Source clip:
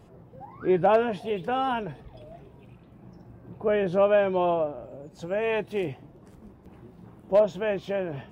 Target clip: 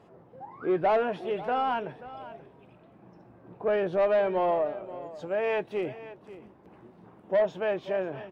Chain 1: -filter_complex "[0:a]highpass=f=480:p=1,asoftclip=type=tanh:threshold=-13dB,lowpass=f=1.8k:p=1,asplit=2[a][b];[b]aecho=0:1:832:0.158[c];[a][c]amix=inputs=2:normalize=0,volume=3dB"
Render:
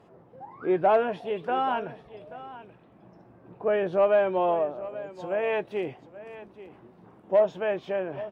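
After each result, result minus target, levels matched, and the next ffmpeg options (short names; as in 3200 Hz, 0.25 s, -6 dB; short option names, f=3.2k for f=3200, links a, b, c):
echo 0.298 s late; soft clip: distortion -11 dB
-filter_complex "[0:a]highpass=f=480:p=1,asoftclip=type=tanh:threshold=-13dB,lowpass=f=1.8k:p=1,asplit=2[a][b];[b]aecho=0:1:534:0.158[c];[a][c]amix=inputs=2:normalize=0,volume=3dB"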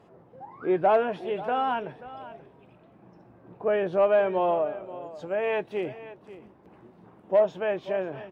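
soft clip: distortion -11 dB
-filter_complex "[0:a]highpass=f=480:p=1,asoftclip=type=tanh:threshold=-21dB,lowpass=f=1.8k:p=1,asplit=2[a][b];[b]aecho=0:1:534:0.158[c];[a][c]amix=inputs=2:normalize=0,volume=3dB"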